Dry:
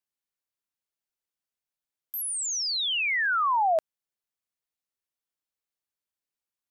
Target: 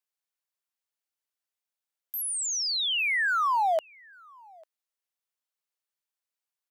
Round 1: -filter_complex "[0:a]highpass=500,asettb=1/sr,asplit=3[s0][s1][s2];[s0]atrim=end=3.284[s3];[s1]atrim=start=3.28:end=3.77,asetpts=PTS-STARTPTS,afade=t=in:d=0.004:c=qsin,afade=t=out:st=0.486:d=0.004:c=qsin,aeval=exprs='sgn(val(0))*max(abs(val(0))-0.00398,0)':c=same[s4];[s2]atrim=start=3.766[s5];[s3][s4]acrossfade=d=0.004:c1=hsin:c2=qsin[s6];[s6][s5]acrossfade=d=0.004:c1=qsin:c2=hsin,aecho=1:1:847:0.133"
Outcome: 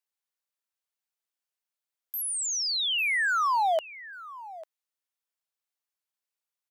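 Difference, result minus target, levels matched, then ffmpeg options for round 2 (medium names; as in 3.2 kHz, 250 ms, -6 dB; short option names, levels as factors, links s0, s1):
echo-to-direct +9.5 dB
-filter_complex "[0:a]highpass=500,asettb=1/sr,asplit=3[s0][s1][s2];[s0]atrim=end=3.284[s3];[s1]atrim=start=3.28:end=3.77,asetpts=PTS-STARTPTS,afade=t=in:d=0.004:c=qsin,afade=t=out:st=0.486:d=0.004:c=qsin,aeval=exprs='sgn(val(0))*max(abs(val(0))-0.00398,0)':c=same[s4];[s2]atrim=start=3.766[s5];[s3][s4]acrossfade=d=0.004:c1=hsin:c2=qsin[s6];[s6][s5]acrossfade=d=0.004:c1=qsin:c2=hsin,aecho=1:1:847:0.0447"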